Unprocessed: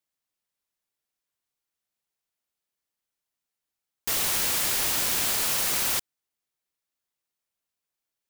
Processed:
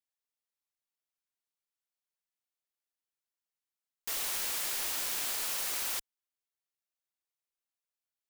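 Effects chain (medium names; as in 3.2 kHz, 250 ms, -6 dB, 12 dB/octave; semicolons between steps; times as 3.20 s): peaking EQ 110 Hz -13 dB 2.3 oct; trim -8.5 dB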